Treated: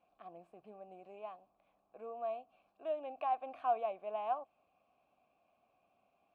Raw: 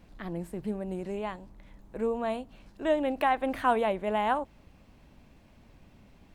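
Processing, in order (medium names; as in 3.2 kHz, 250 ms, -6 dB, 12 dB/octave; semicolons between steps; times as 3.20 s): in parallel at -10 dB: saturation -22.5 dBFS, distortion -13 dB; on the sum: vowel filter a; trim -4.5 dB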